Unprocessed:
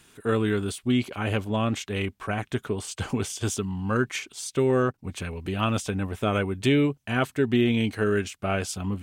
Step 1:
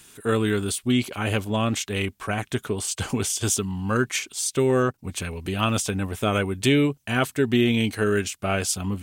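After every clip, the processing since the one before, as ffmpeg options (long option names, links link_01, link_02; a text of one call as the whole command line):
ffmpeg -i in.wav -af "highshelf=frequency=4500:gain=10,volume=1.5dB" out.wav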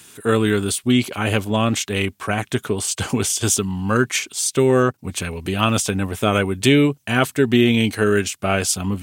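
ffmpeg -i in.wav -af "highpass=78,volume=5dB" out.wav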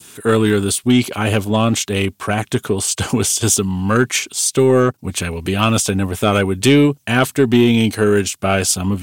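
ffmpeg -i in.wav -filter_complex "[0:a]adynamicequalizer=threshold=0.0158:dfrequency=1900:dqfactor=1.2:tfrequency=1900:tqfactor=1.2:attack=5:release=100:ratio=0.375:range=2.5:mode=cutabove:tftype=bell,asplit=2[link_01][link_02];[link_02]acontrast=87,volume=1dB[link_03];[link_01][link_03]amix=inputs=2:normalize=0,volume=-6.5dB" out.wav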